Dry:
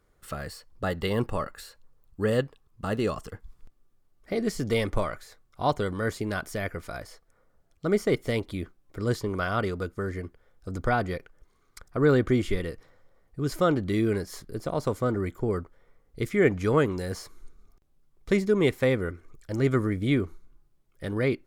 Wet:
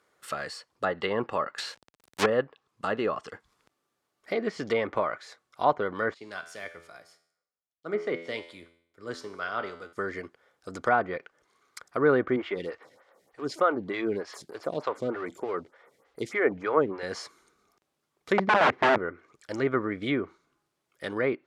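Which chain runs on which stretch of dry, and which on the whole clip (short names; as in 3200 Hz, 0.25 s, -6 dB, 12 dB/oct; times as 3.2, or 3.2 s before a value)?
1.58–2.26 half-waves squared off + high shelf 3800 Hz +9.5 dB
6.14–9.93 resonator 84 Hz, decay 0.93 s, mix 70% + three-band expander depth 70%
12.36–17.03 G.711 law mismatch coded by mu + photocell phaser 3.3 Hz
18.38–18.98 median filter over 5 samples + low shelf 270 Hz +10.5 dB + wrapped overs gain 15.5 dB
whole clip: weighting filter A; treble ducked by the level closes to 1600 Hz, closed at -27 dBFS; gain +4 dB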